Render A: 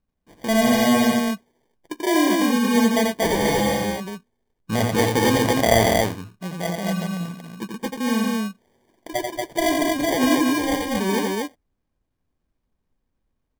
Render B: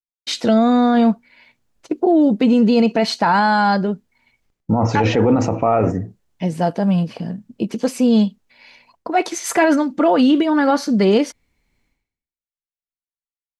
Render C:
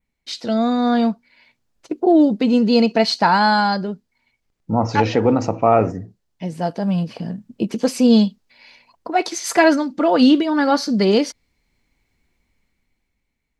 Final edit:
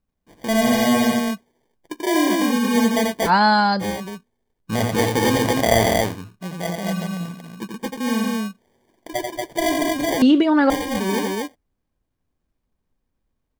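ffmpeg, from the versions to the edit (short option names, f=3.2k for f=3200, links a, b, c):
-filter_complex "[0:a]asplit=3[a][b][c];[a]atrim=end=3.31[d];[2:a]atrim=start=3.25:end=3.85[e];[b]atrim=start=3.79:end=10.222[f];[1:a]atrim=start=10.218:end=10.702[g];[c]atrim=start=10.698[h];[d][e]acrossfade=d=0.06:c1=tri:c2=tri[i];[i][f]acrossfade=d=0.06:c1=tri:c2=tri[j];[j][g]acrossfade=d=0.004:c1=hsin:c2=hsin[k];[k][h]acrossfade=d=0.004:c1=hsin:c2=hsin"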